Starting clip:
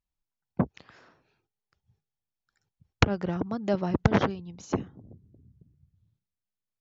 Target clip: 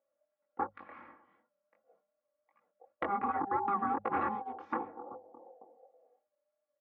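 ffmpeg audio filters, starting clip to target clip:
-af "aeval=exprs='val(0)*sin(2*PI*600*n/s)':c=same,highpass=f=100:w=0.5412,highpass=f=100:w=1.3066,acompressor=threshold=-34dB:ratio=1.5,lowpass=f=2k:w=0.5412,lowpass=f=2k:w=1.3066,equalizer=f=1.2k:t=o:w=0.32:g=8,bandreject=f=50:t=h:w=6,bandreject=f=100:t=h:w=6,bandreject=f=150:t=h:w=6,bandreject=f=200:t=h:w=6,flanger=delay=17.5:depth=7.4:speed=2.7,aecho=1:1:3.6:0.81,alimiter=level_in=5.5dB:limit=-24dB:level=0:latency=1:release=132,volume=-5.5dB,volume=7dB"

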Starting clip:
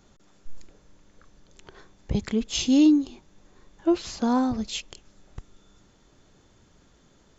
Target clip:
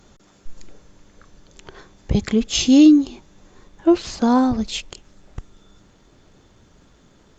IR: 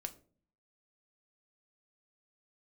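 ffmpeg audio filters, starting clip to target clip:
-filter_complex "[0:a]asettb=1/sr,asplit=3[a][b][c];[a]atrim=end=2.144[d];[b]atrim=start=2.14:end=3.03,asetpts=PTS-STARTPTS,afade=t=in:d=0.004:c=qsin,afade=t=out:st=0.886:d=0.004:c=qsin,asuperstop=centerf=940:order=20:qfactor=6.9[e];[c]atrim=start=3.026[f];[d][e]acrossfade=d=0.004:c1=hsin:c2=qsin[g];[g][f]acrossfade=d=0.004:c1=qsin:c2=hsin,asettb=1/sr,asplit=3[h][i][j];[h]atrim=end=3.954[k];[i]atrim=start=3.95:end=4.89,asetpts=PTS-STARTPTS,afade=t=in:d=0.004:c=qsin,afade=t=out:st=0.936:d=0.004:c=qsin,asubboost=boost=3:cutoff=68[l];[j]atrim=start=4.886[m];[k][l]acrossfade=d=0.004:c1=hsin:c2=qsin[n];[n][m]acrossfade=d=0.004:c1=qsin:c2=hsin,volume=7dB" -ar 48000 -c:a libopus -b:a 48k

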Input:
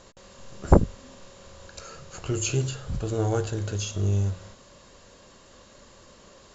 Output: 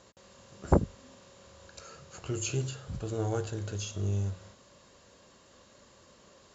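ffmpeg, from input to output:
-af "highpass=61,volume=-6dB"

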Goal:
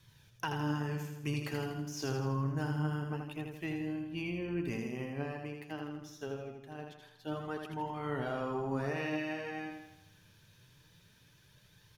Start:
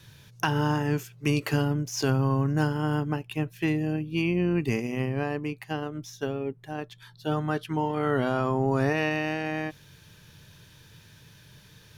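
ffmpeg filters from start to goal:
-af "aecho=1:1:81|162|243|324|405|486|567:0.562|0.298|0.158|0.0837|0.0444|0.0235|0.0125,flanger=delay=0.9:depth=9.2:regen=61:speed=0.25:shape=sinusoidal,volume=-7dB"

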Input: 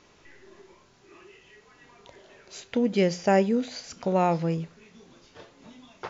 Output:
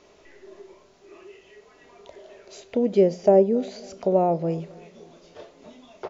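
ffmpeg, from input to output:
-filter_complex "[0:a]equalizer=f=125:t=o:w=0.33:g=-10,equalizer=f=400:t=o:w=0.33:g=8,equalizer=f=630:t=o:w=0.33:g=11,equalizer=f=1.6k:t=o:w=0.33:g=-3,acrossover=split=840[a][b];[b]acompressor=threshold=-43dB:ratio=6[c];[a][c]amix=inputs=2:normalize=0,asplit=2[d][e];[e]adelay=273,lowpass=f=2k:p=1,volume=-23.5dB,asplit=2[f][g];[g]adelay=273,lowpass=f=2k:p=1,volume=0.54,asplit=2[h][i];[i]adelay=273,lowpass=f=2k:p=1,volume=0.54,asplit=2[j][k];[k]adelay=273,lowpass=f=2k:p=1,volume=0.54[l];[d][f][h][j][l]amix=inputs=5:normalize=0"

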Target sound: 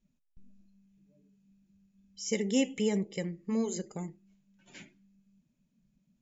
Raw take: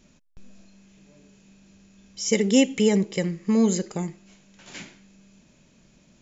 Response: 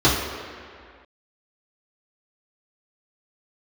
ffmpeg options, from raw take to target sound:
-af "flanger=delay=1.8:depth=5.4:regen=-86:speed=0.56:shape=triangular,afftdn=nr=17:nf=-50,volume=-5dB"

